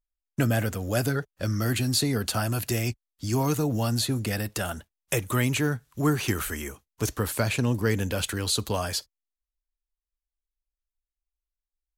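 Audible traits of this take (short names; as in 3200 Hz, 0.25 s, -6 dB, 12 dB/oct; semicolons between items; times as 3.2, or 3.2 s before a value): noise floor -90 dBFS; spectral tilt -4.5 dB/oct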